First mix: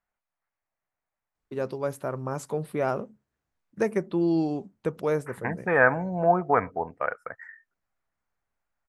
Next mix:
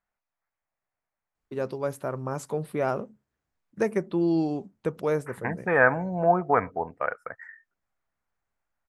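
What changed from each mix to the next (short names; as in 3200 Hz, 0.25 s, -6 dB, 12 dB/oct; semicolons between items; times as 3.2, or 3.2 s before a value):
none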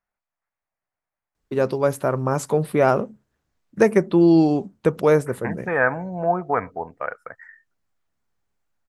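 first voice +9.5 dB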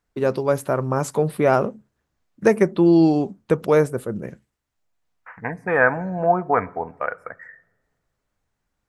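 first voice: entry -1.35 s; reverb: on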